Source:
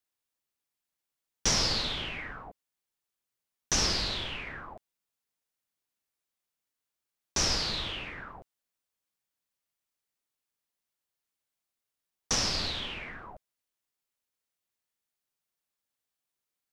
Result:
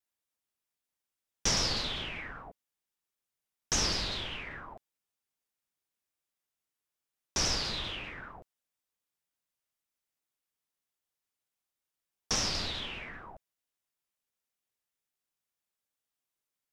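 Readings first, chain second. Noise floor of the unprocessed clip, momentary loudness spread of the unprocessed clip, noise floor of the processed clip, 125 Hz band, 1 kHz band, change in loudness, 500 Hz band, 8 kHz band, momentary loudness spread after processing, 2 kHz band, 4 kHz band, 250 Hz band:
below −85 dBFS, 18 LU, below −85 dBFS, −2.0 dB, −2.0 dB, −2.5 dB, −2.0 dB, −2.0 dB, 18 LU, −2.0 dB, −2.5 dB, −2.0 dB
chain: notch filter 4,300 Hz, Q 20
pitch modulation by a square or saw wave saw down 5.1 Hz, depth 100 cents
level −2 dB

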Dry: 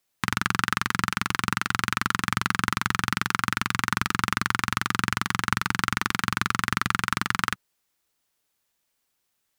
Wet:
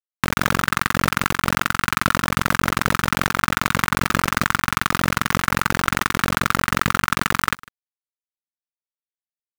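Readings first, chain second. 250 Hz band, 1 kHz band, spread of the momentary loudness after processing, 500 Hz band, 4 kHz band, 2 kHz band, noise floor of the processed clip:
+6.0 dB, +6.5 dB, 1 LU, +10.5 dB, +4.0 dB, +5.5 dB, below −85 dBFS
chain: high-shelf EQ 2,800 Hz −2.5 dB
mains-hum notches 50/100/150/200/250/300 Hz
in parallel at +0.5 dB: output level in coarse steps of 15 dB
on the sum: leveller curve on the samples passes 1
brickwall limiter −9.5 dBFS, peak gain reduction 9.5 dB
bit reduction 5 bits
on a send: single-tap delay 152 ms −23.5 dB
on the sum: level +8 dB

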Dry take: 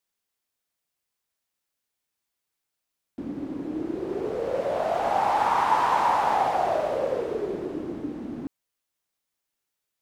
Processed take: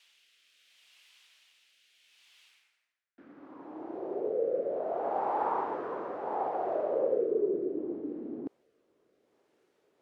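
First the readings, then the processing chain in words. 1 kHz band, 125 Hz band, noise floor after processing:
−11.0 dB, below −10 dB, −75 dBFS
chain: dynamic equaliser 1,300 Hz, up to +5 dB, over −35 dBFS, Q 1.2
reversed playback
upward compression, threshold −28 dBFS
reversed playback
rotating-speaker cabinet horn 0.7 Hz
band-pass filter sweep 2,900 Hz → 410 Hz, 0:02.47–0:04.60
level +2.5 dB

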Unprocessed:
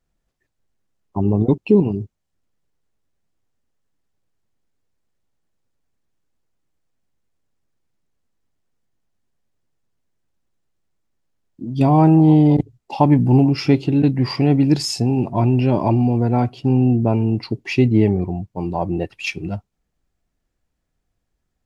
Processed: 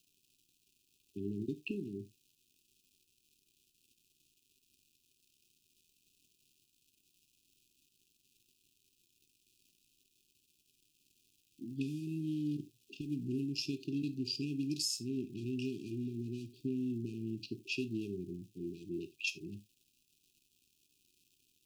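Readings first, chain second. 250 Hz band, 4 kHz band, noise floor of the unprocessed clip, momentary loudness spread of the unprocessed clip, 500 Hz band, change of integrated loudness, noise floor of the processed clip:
−21.5 dB, −10.5 dB, −76 dBFS, 13 LU, −23.5 dB, −22.0 dB, −77 dBFS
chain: adaptive Wiener filter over 15 samples
high-pass filter 100 Hz
RIAA equalisation recording
low-pass that shuts in the quiet parts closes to 1,600 Hz, open at −16 dBFS
downward compressor, threshold −25 dBFS, peak gain reduction 13 dB
surface crackle 310 per second −46 dBFS
bit-depth reduction 12 bits, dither triangular
linear-phase brick-wall band-stop 420–2,400 Hz
reverb whose tail is shaped and stops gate 110 ms falling, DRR 8.5 dB
level −9 dB

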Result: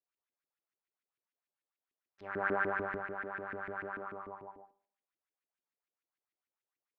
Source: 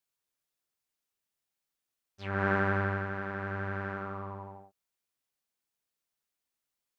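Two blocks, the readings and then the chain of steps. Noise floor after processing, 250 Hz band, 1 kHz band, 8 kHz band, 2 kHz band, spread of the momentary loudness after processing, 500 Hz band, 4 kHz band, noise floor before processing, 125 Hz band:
below −85 dBFS, −9.0 dB, −3.5 dB, can't be measured, −3.5 dB, 16 LU, −3.5 dB, below −10 dB, below −85 dBFS, −18.5 dB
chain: auto-filter band-pass saw up 6.8 Hz 280–2,400 Hz
four-comb reverb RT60 0.56 s, DRR 17 dB
level +2.5 dB

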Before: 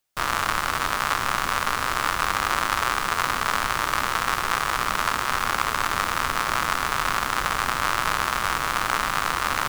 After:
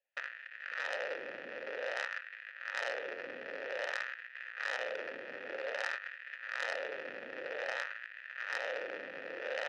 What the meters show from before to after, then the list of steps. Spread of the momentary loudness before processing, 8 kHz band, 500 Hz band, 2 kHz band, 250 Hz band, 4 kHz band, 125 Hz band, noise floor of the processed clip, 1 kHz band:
1 LU, −28.0 dB, −5.5 dB, −12.5 dB, −19.5 dB, −19.0 dB, below −35 dB, −52 dBFS, −24.5 dB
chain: formant filter e
low-shelf EQ 84 Hz +7 dB
LFO wah 0.52 Hz 260–1,800 Hz, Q 2.1
low-pass filter 5,400 Hz
tilt shelving filter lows −8.5 dB, about 1,100 Hz
compressor whose output falls as the input rises −47 dBFS, ratio −0.5
saturating transformer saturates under 2,800 Hz
level +9 dB

